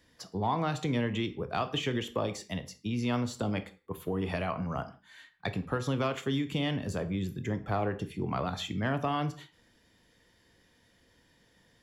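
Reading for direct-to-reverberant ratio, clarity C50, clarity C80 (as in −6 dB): 10.0 dB, 15.5 dB, 19.0 dB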